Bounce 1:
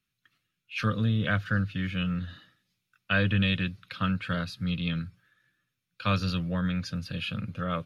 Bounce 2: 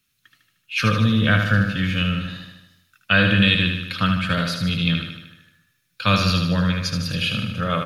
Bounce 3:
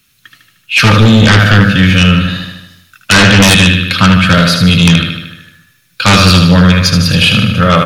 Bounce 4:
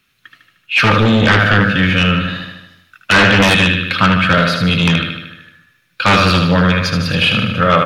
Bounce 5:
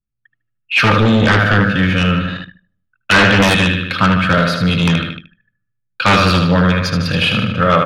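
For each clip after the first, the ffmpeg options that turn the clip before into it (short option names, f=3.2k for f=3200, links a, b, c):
-filter_complex "[0:a]highshelf=f=3.5k:g=9,asplit=2[a][b];[b]aecho=0:1:76|152|228|304|380|456|532|608:0.531|0.308|0.179|0.104|0.0601|0.0348|0.0202|0.0117[c];[a][c]amix=inputs=2:normalize=0,volume=7dB"
-af "aeval=exprs='0.708*sin(PI/2*3.55*val(0)/0.708)':c=same,volume=1.5dB"
-af "bass=f=250:g=-7,treble=f=4k:g=-13,volume=-1.5dB"
-af "anlmdn=398,adynamicequalizer=threshold=0.0501:dfrequency=2700:dqfactor=0.99:tfrequency=2700:tqfactor=0.99:attack=5:release=100:ratio=0.375:range=2.5:mode=cutabove:tftype=bell"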